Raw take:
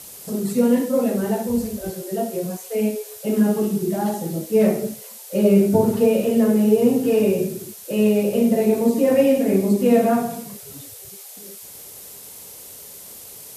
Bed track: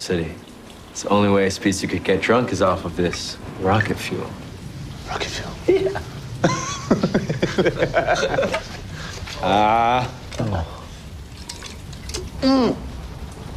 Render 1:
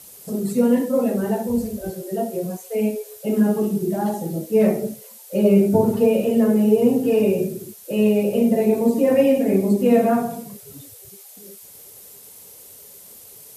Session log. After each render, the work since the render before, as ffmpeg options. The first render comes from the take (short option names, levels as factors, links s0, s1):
-af "afftdn=nr=6:nf=-40"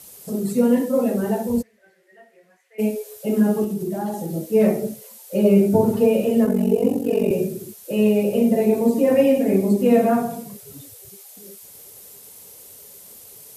-filter_complex "[0:a]asplit=3[s0][s1][s2];[s0]afade=t=out:st=1.61:d=0.02[s3];[s1]bandpass=f=1900:t=q:w=6.3,afade=t=in:st=1.61:d=0.02,afade=t=out:st=2.78:d=0.02[s4];[s2]afade=t=in:st=2.78:d=0.02[s5];[s3][s4][s5]amix=inputs=3:normalize=0,asettb=1/sr,asplit=3[s6][s7][s8];[s6]atrim=end=3.644[s9];[s7]atrim=start=3.64:end=4.33,asetpts=PTS-STARTPTS,afade=t=in:d=0.004:c=qsin,afade=t=out:st=0.686:d=0.004:c=qsin,acompressor=threshold=0.0631:ratio=2:attack=3.2:release=140:knee=1:detection=peak[s10];[s8]atrim=start=4.326[s11];[s9][s10]acrossfade=d=0.004:c1=hsin:c2=qsin[s12];[s12][s11]acrossfade=d=0.004:c1=qsin:c2=hsin,asettb=1/sr,asplit=3[s13][s14][s15];[s13]atrim=end=6.454[s16];[s14]atrim=start=6.45:end=7.31,asetpts=PTS-STARTPTS,afade=t=in:d=0.004:c=qsin,afade=t=out:st=0.856:d=0.004:c=qsin,aeval=exprs='val(0)*sin(2*PI*23*n/s)':c=same[s17];[s15]atrim=start=7.306[s18];[s16][s17]acrossfade=d=0.004:c1=hsin:c2=qsin[s19];[s19][s18]acrossfade=d=0.004:c1=qsin:c2=hsin"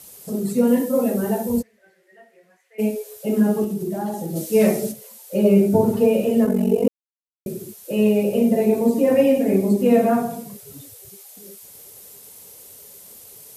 -filter_complex "[0:a]asettb=1/sr,asplit=3[s0][s1][s2];[s0]atrim=end=0.674[s3];[s1]atrim=start=0.67:end=1.6,asetpts=PTS-STARTPTS,afade=t=in:d=0.004:c=qsin,afade=t=out:st=0.926:d=0.004:c=qsin,highshelf=f=10000:g=9[s4];[s2]atrim=start=1.596[s5];[s3][s4]acrossfade=d=0.004:c1=hsin:c2=qsin[s6];[s6][s5]acrossfade=d=0.004:c1=qsin:c2=hsin,asplit=3[s7][s8][s9];[s7]afade=t=out:st=4.35:d=0.02[s10];[s8]equalizer=f=6900:w=0.32:g=10.5,afade=t=in:st=4.35:d=0.02,afade=t=out:st=4.91:d=0.02[s11];[s9]afade=t=in:st=4.91:d=0.02[s12];[s10][s11][s12]amix=inputs=3:normalize=0,asplit=3[s13][s14][s15];[s13]atrim=end=6.88,asetpts=PTS-STARTPTS,afade=t=out:st=6.876:d=0.004:c=hsin[s16];[s14]atrim=start=6.88:end=7.46,asetpts=PTS-STARTPTS,volume=0[s17];[s15]atrim=start=7.46,asetpts=PTS-STARTPTS,afade=t=in:d=0.004:c=hsin[s18];[s16][s17][s18]concat=n=3:v=0:a=1"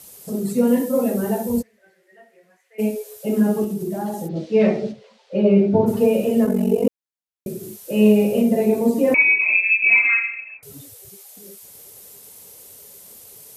-filter_complex "[0:a]asplit=3[s0][s1][s2];[s0]afade=t=out:st=4.27:d=0.02[s3];[s1]lowpass=f=4100:w=0.5412,lowpass=f=4100:w=1.3066,afade=t=in:st=4.27:d=0.02,afade=t=out:st=5.86:d=0.02[s4];[s2]afade=t=in:st=5.86:d=0.02[s5];[s3][s4][s5]amix=inputs=3:normalize=0,asettb=1/sr,asplit=3[s6][s7][s8];[s6]atrim=end=7.594[s9];[s7]atrim=start=7.59:end=8.42,asetpts=PTS-STARTPTS,afade=t=in:d=0.004:c=qsin,afade=t=out:st=0.826:d=0.004:c=qsin,asplit=2[s10][s11];[s11]adelay=38,volume=0.708[s12];[s10][s12]amix=inputs=2:normalize=0,atrim=end_sample=36603[s13];[s8]atrim=start=8.416[s14];[s9][s13]acrossfade=d=0.004:c1=hsin:c2=qsin[s15];[s15][s14]acrossfade=d=0.004:c1=qsin:c2=hsin,asettb=1/sr,asplit=3[s16][s17][s18];[s16]atrim=end=9.144[s19];[s17]atrim=start=9.14:end=10.63,asetpts=PTS-STARTPTS,afade=t=in:d=0.004:c=qsin,afade=t=out:st=1.486:d=0.004:c=qsin,lowpass=f=2400:t=q:w=0.5098,lowpass=f=2400:t=q:w=0.6013,lowpass=f=2400:t=q:w=0.9,lowpass=f=2400:t=q:w=2.563,afreqshift=-2800[s20];[s18]atrim=start=10.626[s21];[s19][s20]acrossfade=d=0.004:c1=hsin:c2=qsin[s22];[s22][s21]acrossfade=d=0.004:c1=qsin:c2=hsin"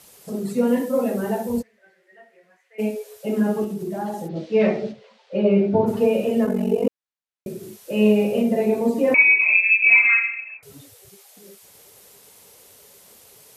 -af "lowpass=f=2700:p=1,tiltshelf=f=670:g=-4"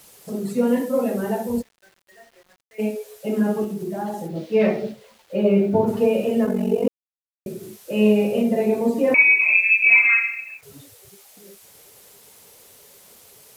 -af "acrusher=bits=8:mix=0:aa=0.000001"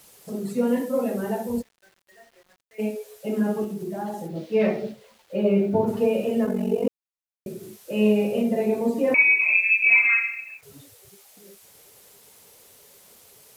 -af "volume=0.708"